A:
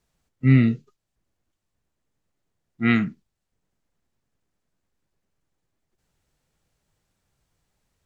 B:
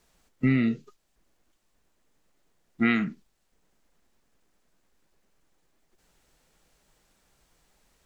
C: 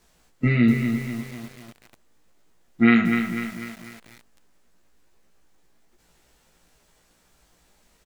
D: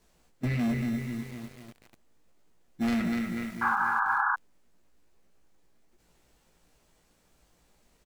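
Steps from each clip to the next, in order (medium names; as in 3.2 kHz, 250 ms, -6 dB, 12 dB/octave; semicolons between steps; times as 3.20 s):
peaking EQ 100 Hz -13 dB 1.2 oct; compression 5:1, threshold -30 dBFS, peak gain reduction 13 dB; trim +9 dB
doubling 17 ms -2 dB; feedback delay 116 ms, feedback 51%, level -14 dB; bit-crushed delay 248 ms, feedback 55%, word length 7-bit, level -6.5 dB; trim +3 dB
saturation -21 dBFS, distortion -7 dB; in parallel at -6.5 dB: sample-and-hold 23×; on the sum: painted sound noise, 3.61–4.36 s, 770–1700 Hz -20 dBFS; trim -6.5 dB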